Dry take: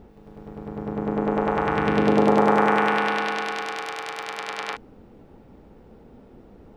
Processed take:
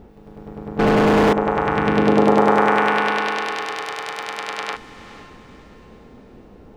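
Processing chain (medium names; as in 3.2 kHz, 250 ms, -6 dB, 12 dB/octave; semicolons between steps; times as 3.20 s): echo that smears into a reverb 494 ms, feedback 43%, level -15 dB; 0.79–1.33 s: overdrive pedal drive 42 dB, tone 2 kHz, clips at -11.5 dBFS; trim +3.5 dB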